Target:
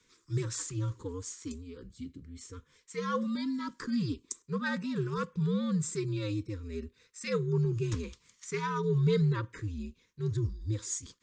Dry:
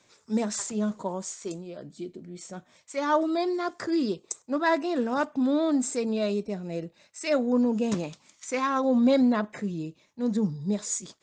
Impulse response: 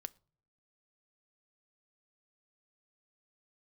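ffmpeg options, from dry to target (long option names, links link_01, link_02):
-af "afreqshift=-96,asuperstop=centerf=700:order=8:qfactor=1.5,volume=-5dB"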